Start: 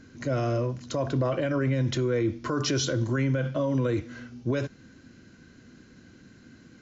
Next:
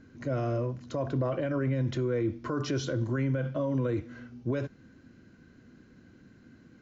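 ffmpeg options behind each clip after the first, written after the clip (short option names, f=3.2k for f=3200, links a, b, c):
-af "highshelf=f=3k:g=-11,volume=-3dB"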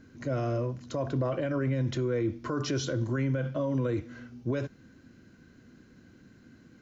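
-af "highshelf=f=4.8k:g=6.5"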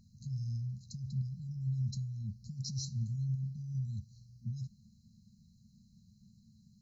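-af "afftfilt=real='re*(1-between(b*sr/4096,230,3900))':imag='im*(1-between(b*sr/4096,230,3900))':win_size=4096:overlap=0.75,volume=-3.5dB"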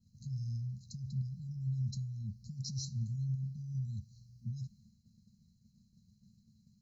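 -af "agate=range=-33dB:threshold=-58dB:ratio=3:detection=peak,volume=-1dB"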